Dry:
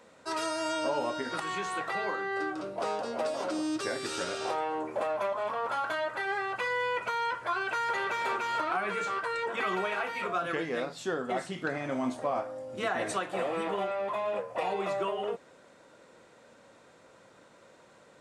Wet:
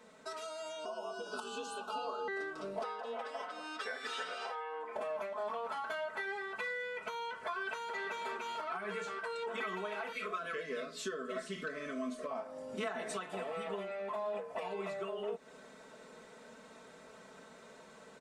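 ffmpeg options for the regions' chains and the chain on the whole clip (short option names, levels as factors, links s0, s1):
-filter_complex "[0:a]asettb=1/sr,asplit=3[s0][s1][s2];[s0]atrim=end=0.854[s3];[s1]atrim=start=0.85:end=2.28,asetpts=PTS-STARTPTS,afade=t=in:d=0.004:c=qsin,afade=t=out:st=1.426:d=0.004:c=qsin,asuperstop=centerf=1900:order=8:qfactor=1.7,afreqshift=76[s4];[s2]atrim=start=2.276[s5];[s3][s4]acrossfade=d=0.004:c1=hsin:c2=qsin[s6];[s6][s5]acrossfade=d=0.004:c1=qsin:c2=hsin,asettb=1/sr,asplit=3[s7][s8][s9];[s7]atrim=end=2.834[s10];[s8]atrim=start=2.83:end=4.96,asetpts=PTS-STARTPTS,afade=t=in:d=0.004:c=qsin,afade=t=out:st=2.126:d=0.004:c=qsin,acrossover=split=500 3300:gain=0.0891 1 0.178[s11][s12][s13];[s11][s12][s13]amix=inputs=3:normalize=0,aecho=1:1:4:0.98,atrim=end_sample=93933[s14];[s9]atrim=start=4.956[s15];[s10][s14]acrossfade=d=0.004:c1=hsin:c2=qsin[s16];[s16][s15]acrossfade=d=0.004:c1=qsin:c2=hsin,asettb=1/sr,asplit=3[s17][s18][s19];[s17]atrim=end=10.124[s20];[s18]atrim=start=10.12:end=12.31,asetpts=PTS-STARTPTS,afade=t=in:d=0.004:c=qsin,afade=t=out:st=2.186:d=0.004:c=qsin,asuperstop=centerf=830:order=20:qfactor=2.5,equalizer=f=130:t=o:w=0.87:g=-11,bandreject=f=60:t=h:w=6,bandreject=f=120:t=h:w=6,bandreject=f=180:t=h:w=6,bandreject=f=240:t=h:w=6,bandreject=f=300:t=h:w=6,bandreject=f=360:t=h:w=6,bandreject=f=420:t=h:w=6[s21];[s19]atrim=start=12.306[s22];[s20][s21]acrossfade=d=0.004:c1=hsin:c2=qsin[s23];[s23][s22]acrossfade=d=0.004:c1=qsin:c2=hsin,acompressor=threshold=0.01:ratio=6,aecho=1:1:4.6:0.96,dynaudnorm=f=790:g=3:m=1.68,volume=0.596"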